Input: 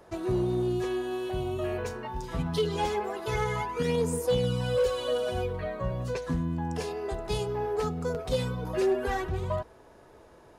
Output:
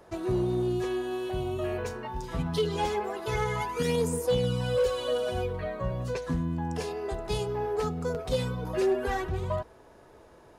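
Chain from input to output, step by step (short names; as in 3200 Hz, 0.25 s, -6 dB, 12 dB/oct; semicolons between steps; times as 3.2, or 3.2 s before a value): 3.6–4.07 high shelf 3900 Hz -> 6900 Hz +9.5 dB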